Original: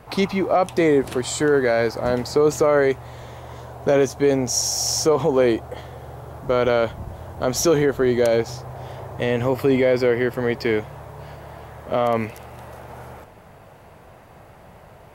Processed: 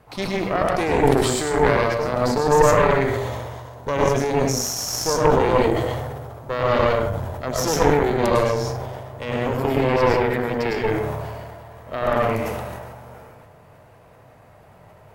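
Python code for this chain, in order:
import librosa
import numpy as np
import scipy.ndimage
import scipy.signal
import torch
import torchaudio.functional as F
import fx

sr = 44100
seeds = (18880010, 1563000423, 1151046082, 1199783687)

y = fx.rev_plate(x, sr, seeds[0], rt60_s=0.57, hf_ratio=0.65, predelay_ms=90, drr_db=-2.0)
y = fx.cheby_harmonics(y, sr, harmonics=(4,), levels_db=(-7,), full_scale_db=1.5)
y = fx.sustainer(y, sr, db_per_s=28.0)
y = F.gain(torch.from_numpy(y), -8.0).numpy()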